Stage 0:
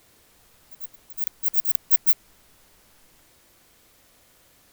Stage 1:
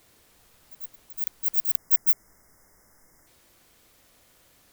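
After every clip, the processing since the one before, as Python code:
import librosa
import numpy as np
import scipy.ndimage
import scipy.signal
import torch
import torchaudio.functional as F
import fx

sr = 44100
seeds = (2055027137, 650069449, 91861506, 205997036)

y = fx.spec_box(x, sr, start_s=1.77, length_s=1.5, low_hz=2200.0, high_hz=4900.0, gain_db=-28)
y = F.gain(torch.from_numpy(y), -2.0).numpy()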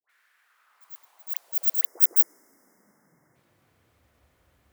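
y = fx.filter_sweep_highpass(x, sr, from_hz=1600.0, to_hz=64.0, start_s=0.33, end_s=4.29, q=2.9)
y = fx.dispersion(y, sr, late='highs', ms=95.0, hz=950.0)
y = fx.band_widen(y, sr, depth_pct=40)
y = F.gain(torch.from_numpy(y), -1.0).numpy()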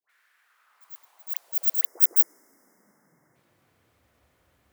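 y = fx.low_shelf(x, sr, hz=64.0, db=-8.5)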